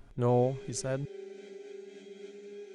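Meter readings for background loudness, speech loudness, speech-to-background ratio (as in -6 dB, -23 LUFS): -47.5 LUFS, -31.0 LUFS, 16.5 dB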